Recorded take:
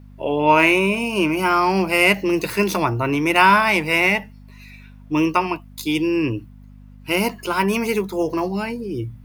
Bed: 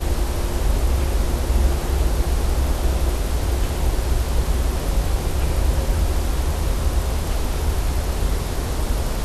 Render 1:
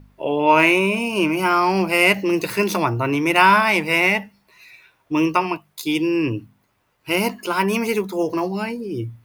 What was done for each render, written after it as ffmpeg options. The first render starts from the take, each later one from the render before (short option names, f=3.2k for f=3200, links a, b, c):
-af "bandreject=f=50:t=h:w=4,bandreject=f=100:t=h:w=4,bandreject=f=150:t=h:w=4,bandreject=f=200:t=h:w=4,bandreject=f=250:t=h:w=4"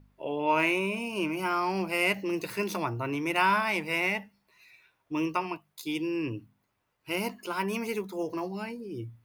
-af "volume=-11dB"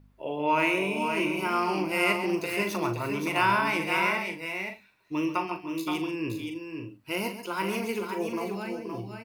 -filter_complex "[0:a]asplit=2[a][b];[b]adelay=40,volume=-9dB[c];[a][c]amix=inputs=2:normalize=0,aecho=1:1:137|521|564:0.282|0.473|0.211"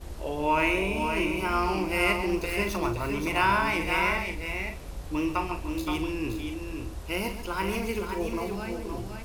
-filter_complex "[1:a]volume=-18dB[a];[0:a][a]amix=inputs=2:normalize=0"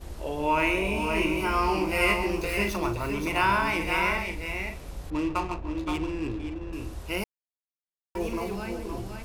-filter_complex "[0:a]asettb=1/sr,asplit=3[a][b][c];[a]atrim=end=0.834[d];[b]atrim=start=0.83:end=2.7,asetpts=PTS-STARTPTS,afade=t=in:d=0.004:c=qsin,afade=t=out:st=1.866:d=0.004:c=qsin,asplit=2[e][f];[f]adelay=19,volume=-4.5dB[g];[e][g]amix=inputs=2:normalize=0,atrim=end_sample=82467[h];[c]atrim=start=2.696[i];[d][h]acrossfade=d=0.004:c1=hsin:c2=qsin[j];[j][i]acrossfade=d=0.004:c1=qsin:c2=hsin,asettb=1/sr,asplit=3[k][l][m];[k]atrim=end=5.104[n];[l]atrim=start=5.1:end=6.73,asetpts=PTS-STARTPTS,afade=t=in:d=0.004:c=qsin,afade=t=out:st=1.626:d=0.004:c=qsin,adynamicsmooth=sensitivity=7.5:basefreq=820[o];[m]atrim=start=6.726[p];[n][o]acrossfade=d=0.004:c1=hsin:c2=qsin[q];[q][p]acrossfade=d=0.004:c1=qsin:c2=hsin,asplit=3[r][s][t];[r]atrim=end=7.24,asetpts=PTS-STARTPTS,afade=t=out:st=7.236:d=0.004:c=hsin[u];[s]atrim=start=7.24:end=8.15,asetpts=PTS-STARTPTS,volume=0[v];[t]atrim=start=8.15,asetpts=PTS-STARTPTS,afade=t=in:d=0.004:c=hsin[w];[u][v][w]concat=n=3:v=0:a=1"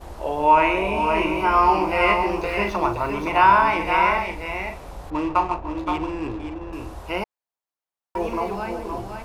-filter_complex "[0:a]equalizer=f=860:t=o:w=1.6:g=11.5,acrossover=split=5300[a][b];[b]acompressor=threshold=-53dB:ratio=4:attack=1:release=60[c];[a][c]amix=inputs=2:normalize=0"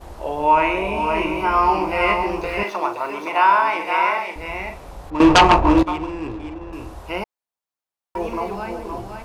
-filter_complex "[0:a]asettb=1/sr,asplit=3[a][b][c];[a]atrim=end=2.634[d];[b]atrim=start=2.63:end=4.36,asetpts=PTS-STARTPTS,afade=t=in:d=0.004:c=qsin,afade=t=out:st=1.726:d=0.004:c=qsin,highpass=370[e];[c]atrim=start=4.356[f];[d][e]acrossfade=d=0.004:c1=hsin:c2=qsin[g];[g][f]acrossfade=d=0.004:c1=qsin:c2=hsin,asettb=1/sr,asplit=3[h][i][j];[h]atrim=end=5.204[k];[i]atrim=start=5.2:end=5.83,asetpts=PTS-STARTPTS,afade=t=in:d=0.004:c=qsin,afade=t=out:st=0.626:d=0.004:c=qsin,aeval=exprs='0.501*sin(PI/2*3.98*val(0)/0.501)':c=same[l];[j]atrim=start=5.826[m];[k][l]acrossfade=d=0.004:c1=hsin:c2=qsin[n];[n][m]acrossfade=d=0.004:c1=qsin:c2=hsin"